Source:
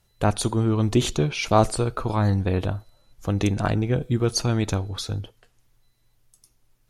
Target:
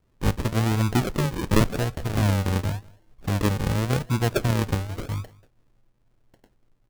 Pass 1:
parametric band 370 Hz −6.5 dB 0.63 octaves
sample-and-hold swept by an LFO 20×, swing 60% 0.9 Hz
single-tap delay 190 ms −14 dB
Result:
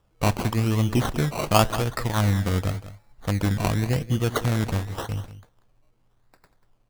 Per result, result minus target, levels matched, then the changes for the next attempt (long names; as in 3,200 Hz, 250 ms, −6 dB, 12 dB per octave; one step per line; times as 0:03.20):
echo-to-direct +10 dB; sample-and-hold swept by an LFO: distortion −5 dB
change: single-tap delay 190 ms −24 dB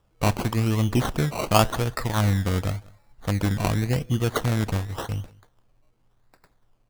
sample-and-hold swept by an LFO: distortion −5 dB
change: sample-and-hold swept by an LFO 51×, swing 60% 0.9 Hz